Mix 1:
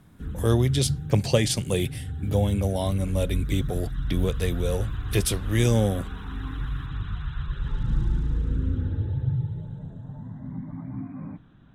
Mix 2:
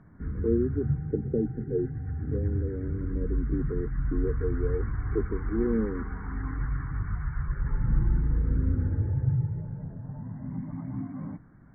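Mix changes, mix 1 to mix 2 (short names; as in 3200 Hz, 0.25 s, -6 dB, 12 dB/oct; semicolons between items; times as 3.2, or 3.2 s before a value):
speech: add Chebyshev band-pass 220–460 Hz, order 4; background: add brick-wall FIR low-pass 2300 Hz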